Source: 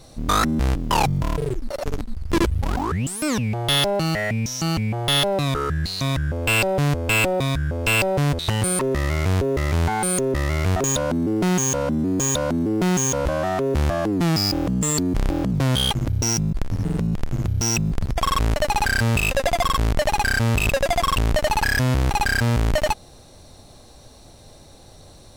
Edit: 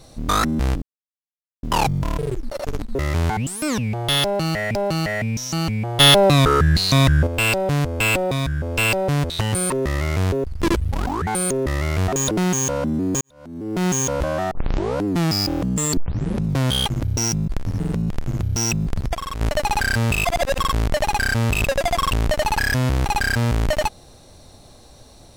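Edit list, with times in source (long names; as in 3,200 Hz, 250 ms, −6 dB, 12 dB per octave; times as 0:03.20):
0:00.82: splice in silence 0.81 s
0:02.14–0:02.97: swap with 0:09.53–0:09.95
0:03.84–0:04.35: repeat, 2 plays
0:05.09–0:06.36: clip gain +8 dB
0:10.99–0:11.36: remove
0:12.26–0:12.91: fade in quadratic
0:13.56: tape start 0.54 s
0:15.02: tape start 0.54 s
0:18.20–0:18.46: clip gain −8.5 dB
0:19.30–0:19.64: reverse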